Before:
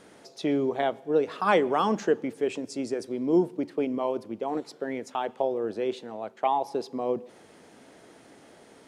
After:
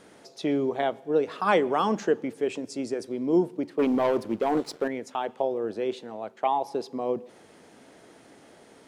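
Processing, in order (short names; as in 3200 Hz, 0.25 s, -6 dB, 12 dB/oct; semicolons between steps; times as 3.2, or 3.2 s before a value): 3.79–4.88 sample leveller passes 2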